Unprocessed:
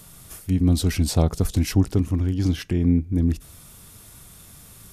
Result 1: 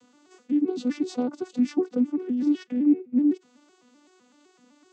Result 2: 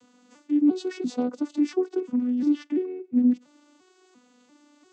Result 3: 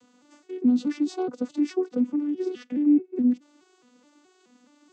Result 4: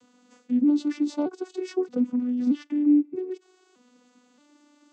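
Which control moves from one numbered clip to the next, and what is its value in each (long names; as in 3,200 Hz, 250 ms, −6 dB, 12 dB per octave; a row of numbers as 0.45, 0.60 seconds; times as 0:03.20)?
vocoder with an arpeggio as carrier, a note every: 127, 345, 212, 625 milliseconds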